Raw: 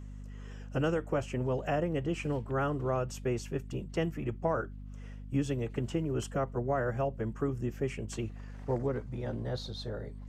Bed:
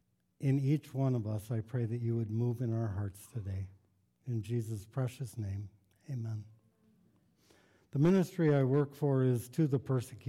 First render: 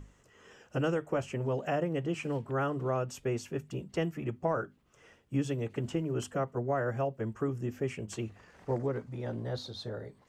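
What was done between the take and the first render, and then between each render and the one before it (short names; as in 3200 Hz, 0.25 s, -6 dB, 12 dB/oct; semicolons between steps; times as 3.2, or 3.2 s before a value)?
notches 50/100/150/200/250 Hz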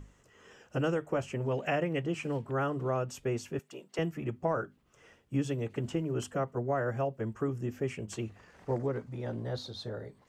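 1.51–2.02 bell 2300 Hz +9 dB 0.79 oct; 3.59–3.99 HPF 460 Hz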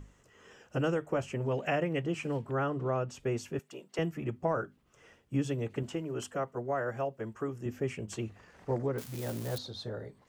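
2.55–3.2 air absorption 58 m; 5.83–7.66 low shelf 250 Hz -8.5 dB; 8.98–9.58 switching spikes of -30.5 dBFS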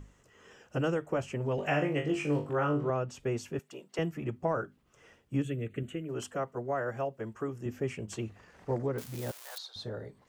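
1.56–2.9 flutter echo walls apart 3.5 m, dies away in 0.3 s; 5.42–6.09 fixed phaser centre 2200 Hz, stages 4; 9.31–9.76 HPF 850 Hz 24 dB/oct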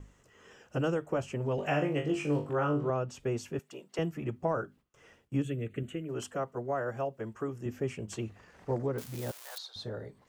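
gate with hold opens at -54 dBFS; dynamic EQ 2000 Hz, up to -4 dB, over -50 dBFS, Q 2.4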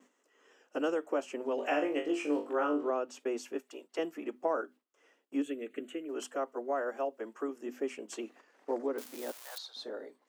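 gate -51 dBFS, range -7 dB; elliptic high-pass 260 Hz, stop band 60 dB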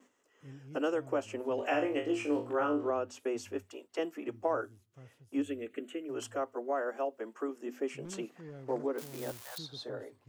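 add bed -19.5 dB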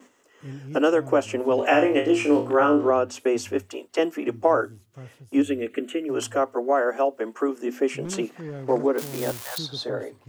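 gain +12 dB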